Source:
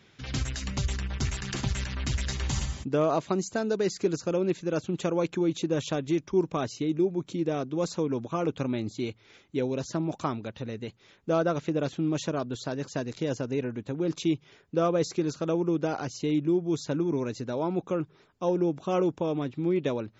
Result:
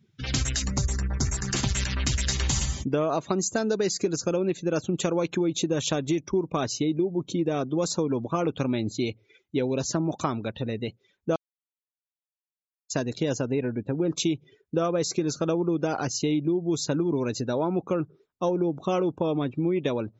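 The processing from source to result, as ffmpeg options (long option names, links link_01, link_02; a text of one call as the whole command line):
ffmpeg -i in.wav -filter_complex "[0:a]asettb=1/sr,asplit=3[link_01][link_02][link_03];[link_01]atrim=end=0.624[link_04];[link_02]atrim=start=0.62:end=1.54,asetpts=PTS-STARTPTS,afade=type=in:duration=0.004:curve=qsin,afade=type=out:start_time=0.916:duration=0.004:curve=qsin,equalizer=frequency=3000:width_type=o:width=1.1:gain=-11[link_05];[link_03]atrim=start=1.536[link_06];[link_04][link_05]acrossfade=duration=0.004:curve1=hsin:curve2=qsin[link_07];[link_07][link_06]acrossfade=duration=0.004:curve1=qsin:curve2=hsin,asettb=1/sr,asplit=3[link_08][link_09][link_10];[link_08]atrim=end=13.464[link_11];[link_09]atrim=start=13.46:end=14.14,asetpts=PTS-STARTPTS,afade=type=in:duration=0.004:curve=qsin,afade=type=out:start_time=0.676:duration=0.004:curve=qsin,highshelf=frequency=5600:gain=-11.5[link_12];[link_10]atrim=start=14.136[link_13];[link_11][link_12]acrossfade=duration=0.004:curve1=hsin:curve2=qsin[link_14];[link_14][link_13]acrossfade=duration=0.004:curve1=qsin:curve2=hsin,asplit=3[link_15][link_16][link_17];[link_15]atrim=end=11.36,asetpts=PTS-STARTPTS,afade=type=out:start_time=11.356:duration=0.004:curve=hsin[link_18];[link_16]atrim=start=11.36:end=12.9,asetpts=PTS-STARTPTS,volume=0[link_19];[link_17]atrim=start=12.9,asetpts=PTS-STARTPTS,afade=type=in:duration=0.004:curve=hsin[link_20];[link_18][link_19][link_20]concat=n=3:v=0:a=1,afftdn=noise_reduction=26:noise_floor=-48,highshelf=frequency=4800:gain=11,acompressor=threshold=-27dB:ratio=6,volume=5.5dB" out.wav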